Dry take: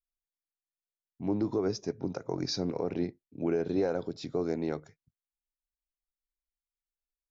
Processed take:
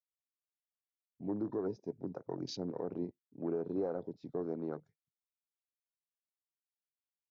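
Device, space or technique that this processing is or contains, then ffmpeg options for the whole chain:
over-cleaned archive recording: -af "highpass=120,lowpass=5300,afwtdn=0.01,volume=-6.5dB"

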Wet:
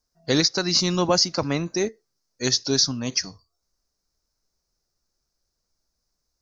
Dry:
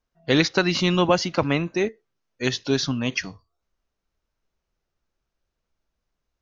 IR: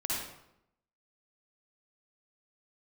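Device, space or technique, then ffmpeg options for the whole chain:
over-bright horn tweeter: -af "highshelf=frequency=3900:width_type=q:width=3:gain=8.5,alimiter=limit=-7dB:level=0:latency=1:release=440,volume=-1dB"

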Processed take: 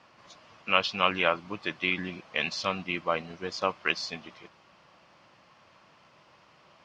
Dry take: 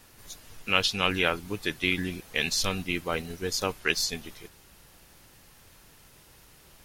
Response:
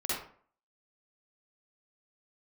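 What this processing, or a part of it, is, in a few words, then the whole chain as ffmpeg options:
kitchen radio: -af "highpass=180,equalizer=frequency=270:width_type=q:width=4:gain=-4,equalizer=frequency=420:width_type=q:width=4:gain=-7,equalizer=frequency=610:width_type=q:width=4:gain=6,equalizer=frequency=1100:width_type=q:width=4:gain=8,equalizer=frequency=1700:width_type=q:width=4:gain=-3,equalizer=frequency=3800:width_type=q:width=4:gain=-7,lowpass=frequency=4500:width=0.5412,lowpass=frequency=4500:width=1.3066"

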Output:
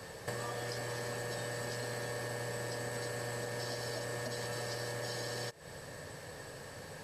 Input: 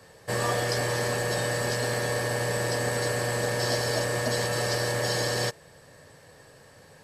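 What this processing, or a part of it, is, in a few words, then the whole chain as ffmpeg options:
serial compression, peaks first: -af "acompressor=threshold=-35dB:ratio=10,acompressor=threshold=-46dB:ratio=2,volume=5dB"

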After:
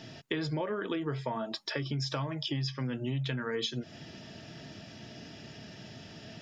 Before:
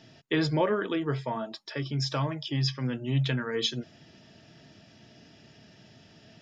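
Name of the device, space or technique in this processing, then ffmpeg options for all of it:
serial compression, peaks first: -af "acompressor=threshold=-35dB:ratio=5,acompressor=threshold=-42dB:ratio=1.5,volume=7dB"

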